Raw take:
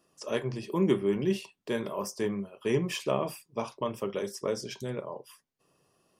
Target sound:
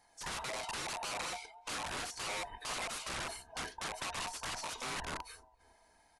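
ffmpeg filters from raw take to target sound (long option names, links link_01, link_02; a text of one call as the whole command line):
ffmpeg -i in.wav -filter_complex "[0:a]afftfilt=real='real(if(lt(b,1008),b+24*(1-2*mod(floor(b/24),2)),b),0)':imag='imag(if(lt(b,1008),b+24*(1-2*mod(floor(b/24),2)),b),0)':win_size=2048:overlap=0.75,equalizer=frequency=130:width_type=o:width=0.77:gain=-13.5,acompressor=threshold=-36dB:ratio=4,asplit=2[link_01][link_02];[link_02]adelay=276,lowpass=frequency=1200:poles=1,volume=-23dB,asplit=2[link_03][link_04];[link_04]adelay=276,lowpass=frequency=1200:poles=1,volume=0.52,asplit=2[link_05][link_06];[link_06]adelay=276,lowpass=frequency=1200:poles=1,volume=0.52[link_07];[link_03][link_05][link_07]amix=inputs=3:normalize=0[link_08];[link_01][link_08]amix=inputs=2:normalize=0,aeval=exprs='(mod(75*val(0)+1,2)-1)/75':channel_layout=same,adynamicequalizer=threshold=0.001:dfrequency=1200:dqfactor=1.9:tfrequency=1200:tqfactor=1.9:attack=5:release=100:ratio=0.375:range=2:mode=boostabove:tftype=bell,volume=2.5dB" -ar 24000 -c:a aac -b:a 64k out.aac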